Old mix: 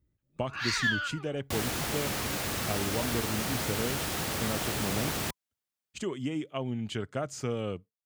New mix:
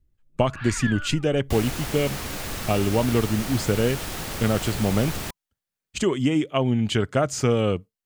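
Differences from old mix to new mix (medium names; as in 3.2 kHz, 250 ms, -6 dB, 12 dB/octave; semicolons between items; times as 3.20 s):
speech +11.5 dB; first sound: add distance through air 390 m; master: remove high-pass 75 Hz 12 dB/octave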